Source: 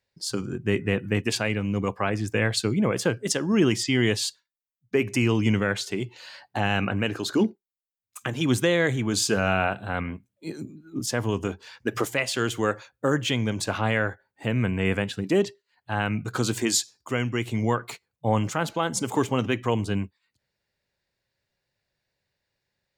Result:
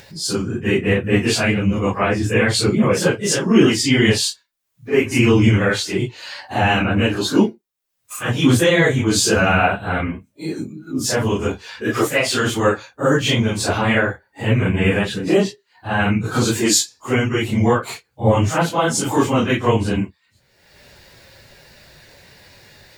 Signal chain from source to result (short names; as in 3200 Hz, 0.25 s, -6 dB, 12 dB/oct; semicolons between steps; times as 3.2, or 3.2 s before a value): phase scrambler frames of 0.1 s; upward compressor, threshold -33 dBFS; gain +8 dB